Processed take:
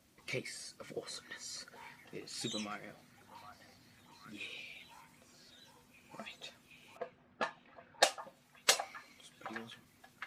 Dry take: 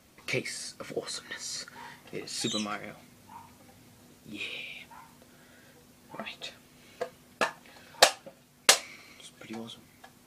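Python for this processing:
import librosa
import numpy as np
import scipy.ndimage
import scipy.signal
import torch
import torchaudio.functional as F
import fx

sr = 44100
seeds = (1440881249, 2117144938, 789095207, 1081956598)

y = fx.spec_quant(x, sr, step_db=15)
y = fx.echo_stepped(y, sr, ms=767, hz=950.0, octaves=0.7, feedback_pct=70, wet_db=-8.0)
y = fx.env_lowpass(y, sr, base_hz=1700.0, full_db=-19.5, at=(6.97, 8.19))
y = F.gain(torch.from_numpy(y), -8.0).numpy()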